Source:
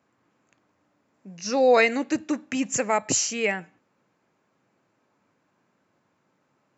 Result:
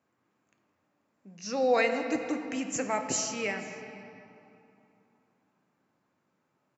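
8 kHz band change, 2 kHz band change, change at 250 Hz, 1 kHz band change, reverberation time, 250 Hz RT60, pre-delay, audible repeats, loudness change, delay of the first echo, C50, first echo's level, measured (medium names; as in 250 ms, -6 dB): no reading, -6.5 dB, -6.0 dB, -6.0 dB, 3.0 s, 3.5 s, 3 ms, 1, -6.5 dB, 488 ms, 6.0 dB, -24.0 dB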